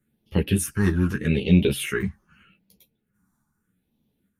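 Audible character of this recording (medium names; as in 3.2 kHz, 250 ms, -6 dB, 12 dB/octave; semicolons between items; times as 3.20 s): phasing stages 4, 0.81 Hz, lowest notch 470–1400 Hz; random-step tremolo; a shimmering, thickened sound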